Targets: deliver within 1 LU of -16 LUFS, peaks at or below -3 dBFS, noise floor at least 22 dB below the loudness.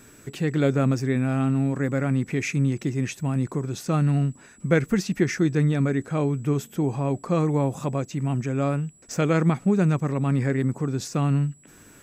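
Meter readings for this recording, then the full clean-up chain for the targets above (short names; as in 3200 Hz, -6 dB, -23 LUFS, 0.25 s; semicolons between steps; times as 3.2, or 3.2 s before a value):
steady tone 7800 Hz; tone level -54 dBFS; loudness -24.5 LUFS; peak -8.0 dBFS; loudness target -16.0 LUFS
-> notch 7800 Hz, Q 30; gain +8.5 dB; limiter -3 dBFS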